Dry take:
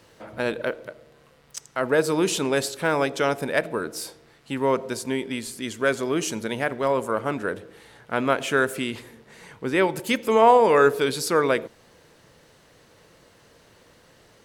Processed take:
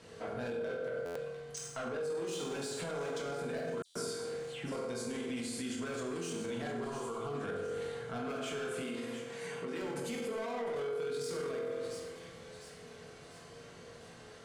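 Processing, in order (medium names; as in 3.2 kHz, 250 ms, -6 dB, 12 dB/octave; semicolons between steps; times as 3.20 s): low-pass 10 kHz 24 dB/octave; saturation -22 dBFS, distortion -7 dB; compression, threshold -33 dBFS, peak gain reduction 9 dB; 6.79–7.35 s: static phaser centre 380 Hz, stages 8; two-band feedback delay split 1.9 kHz, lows 82 ms, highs 701 ms, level -14 dB; reverberation RT60 1.1 s, pre-delay 3 ms, DRR -4.5 dB; peak limiter -26.5 dBFS, peak gain reduction 14 dB; 3.82–4.72 s: phase dispersion lows, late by 139 ms, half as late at 1.9 kHz; 8.82–9.82 s: high-pass 190 Hz 12 dB/octave; buffer glitch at 1.05/3.85 s, samples 512, times 8; trim -4 dB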